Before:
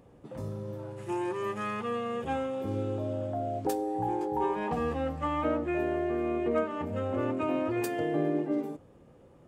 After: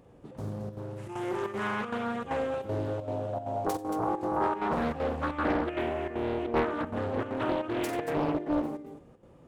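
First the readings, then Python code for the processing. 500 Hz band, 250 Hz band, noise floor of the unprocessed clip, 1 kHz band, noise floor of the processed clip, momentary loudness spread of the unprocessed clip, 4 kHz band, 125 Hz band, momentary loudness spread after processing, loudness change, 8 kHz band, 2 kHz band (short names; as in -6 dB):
-0.5 dB, -0.5 dB, -56 dBFS, +1.5 dB, -55 dBFS, 9 LU, +3.5 dB, 0.0 dB, 9 LU, 0.0 dB, 0.0 dB, +3.5 dB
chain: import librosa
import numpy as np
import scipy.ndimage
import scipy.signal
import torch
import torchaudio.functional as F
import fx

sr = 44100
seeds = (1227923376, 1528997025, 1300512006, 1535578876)

y = fx.echo_multitap(x, sr, ms=(47, 90, 228), db=(-8.0, -11.5, -8.0))
y = fx.chopper(y, sr, hz=2.6, depth_pct=60, duty_pct=80)
y = fx.doppler_dist(y, sr, depth_ms=0.72)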